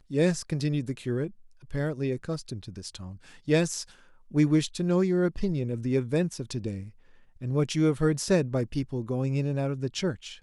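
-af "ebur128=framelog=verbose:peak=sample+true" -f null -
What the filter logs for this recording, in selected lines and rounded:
Integrated loudness:
  I:         -28.2 LUFS
  Threshold: -38.8 LUFS
Loudness range:
  LRA:         4.3 LU
  Threshold: -48.7 LUFS
  LRA low:   -31.6 LUFS
  LRA high:  -27.4 LUFS
Sample peak:
  Peak:      -12.2 dBFS
True peak:
  Peak:      -12.2 dBFS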